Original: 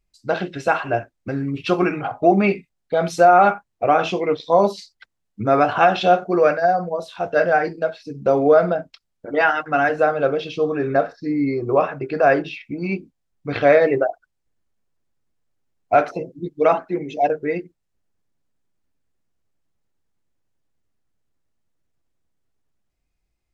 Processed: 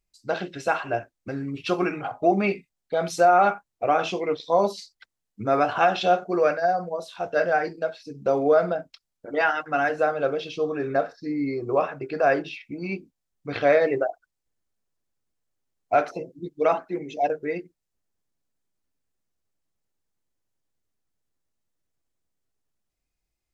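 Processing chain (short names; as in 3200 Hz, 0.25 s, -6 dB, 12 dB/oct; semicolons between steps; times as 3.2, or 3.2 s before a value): tone controls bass -3 dB, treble +5 dB; gain -5 dB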